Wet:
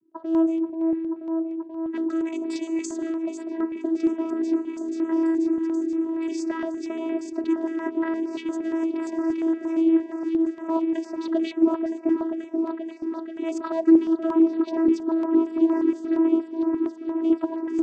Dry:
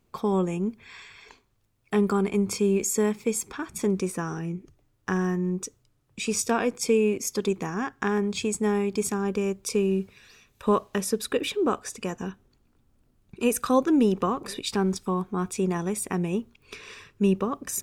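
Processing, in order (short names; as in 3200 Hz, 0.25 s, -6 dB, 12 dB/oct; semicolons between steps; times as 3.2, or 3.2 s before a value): low-pass opened by the level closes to 500 Hz, open at -20 dBFS; 2.2–2.85 tilt +4 dB/oct; in parallel at +3 dB: compressor, threshold -36 dBFS, peak gain reduction 19.5 dB; on the sum: overloaded stage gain 14 dB; on a send: repeats that get brighter 0.483 s, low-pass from 750 Hz, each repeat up 1 oct, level -3 dB; on the sum: vocoder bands 16, saw 326 Hz; stepped notch 8.6 Hz 680–6300 Hz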